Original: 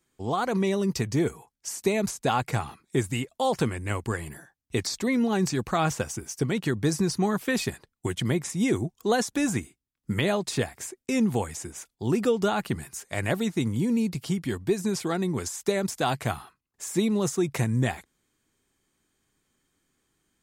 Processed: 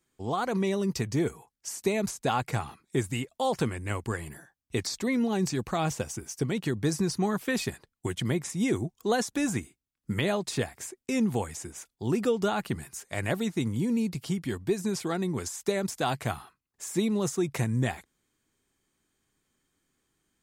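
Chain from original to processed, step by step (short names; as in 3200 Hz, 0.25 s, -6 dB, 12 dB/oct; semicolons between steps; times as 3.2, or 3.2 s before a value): 5.22–6.8 dynamic EQ 1400 Hz, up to -5 dB, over -39 dBFS, Q 1.5; gain -2.5 dB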